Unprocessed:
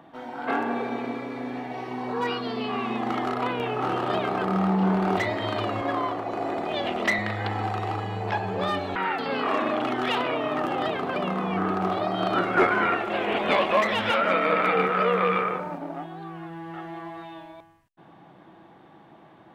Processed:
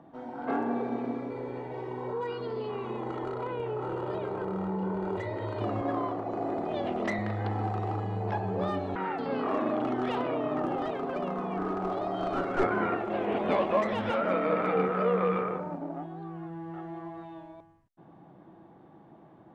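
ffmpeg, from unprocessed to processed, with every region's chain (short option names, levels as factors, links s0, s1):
-filter_complex "[0:a]asettb=1/sr,asplit=3[s0][s1][s2];[s0]atrim=end=1.304[s3];[s1]atrim=start=1.3:end=5.61,asetpts=PTS-STARTPTS,afade=t=in:d=0.004:c=qsin,afade=t=out:st=4.306:d=0.004:c=qsin,bandreject=f=5500:w=5.7,aecho=1:1:2.1:0.68,atrim=end_sample=190071,acompressor=threshold=0.0398:ratio=2.5:attack=3.2:release=140:knee=1:detection=peak[s4];[s2]atrim=start=5.606[s5];[s3][s4]acrossfade=d=0.004:c1=hsin:c2=qsin[s6];[s6][s5]acrossfade=d=0.004:c1=qsin:c2=hsin,asettb=1/sr,asplit=3[s7][s8][s9];[s7]atrim=end=10.764[s10];[s8]atrim=start=10.76:end=12.64,asetpts=PTS-STARTPTS,afade=t=in:d=0.004:c=qsin,afade=t=out:st=1.876:d=0.004:c=qsin,highpass=f=280:p=1,aecho=1:1:7.3:0.35,atrim=end_sample=82908,aeval=exprs='clip(val(0),-1,0.075)':c=same[s11];[s9]atrim=start=12.636[s12];[s10][s11]acrossfade=d=0.004:c1=hsin:c2=qsin[s13];[s13][s12]acrossfade=d=0.004:c1=qsin:c2=hsin,lowpass=6300,equalizer=f=3100:t=o:w=2.9:g=-14"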